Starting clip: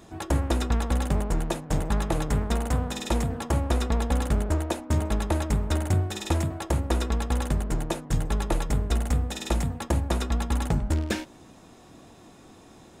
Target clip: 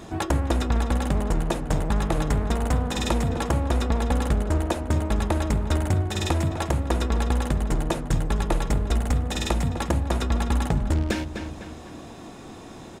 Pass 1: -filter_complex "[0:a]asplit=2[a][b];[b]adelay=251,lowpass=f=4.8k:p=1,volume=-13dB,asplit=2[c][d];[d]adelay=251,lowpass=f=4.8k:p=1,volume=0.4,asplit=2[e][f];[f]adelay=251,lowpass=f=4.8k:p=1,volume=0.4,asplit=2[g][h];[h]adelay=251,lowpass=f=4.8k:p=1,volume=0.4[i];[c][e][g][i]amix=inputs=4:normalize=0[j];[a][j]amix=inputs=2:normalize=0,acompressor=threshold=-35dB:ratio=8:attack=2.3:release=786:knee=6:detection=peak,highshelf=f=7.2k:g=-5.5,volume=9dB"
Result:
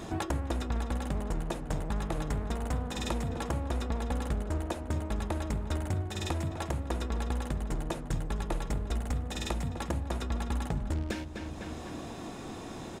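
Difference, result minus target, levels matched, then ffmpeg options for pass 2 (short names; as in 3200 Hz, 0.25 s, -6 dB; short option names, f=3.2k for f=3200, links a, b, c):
compressor: peak gain reduction +9 dB
-filter_complex "[0:a]asplit=2[a][b];[b]adelay=251,lowpass=f=4.8k:p=1,volume=-13dB,asplit=2[c][d];[d]adelay=251,lowpass=f=4.8k:p=1,volume=0.4,asplit=2[e][f];[f]adelay=251,lowpass=f=4.8k:p=1,volume=0.4,asplit=2[g][h];[h]adelay=251,lowpass=f=4.8k:p=1,volume=0.4[i];[c][e][g][i]amix=inputs=4:normalize=0[j];[a][j]amix=inputs=2:normalize=0,acompressor=threshold=-24.5dB:ratio=8:attack=2.3:release=786:knee=6:detection=peak,highshelf=f=7.2k:g=-5.5,volume=9dB"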